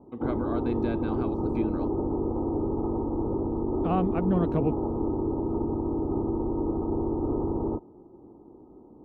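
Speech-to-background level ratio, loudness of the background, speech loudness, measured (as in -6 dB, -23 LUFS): -1.5 dB, -29.5 LUFS, -31.0 LUFS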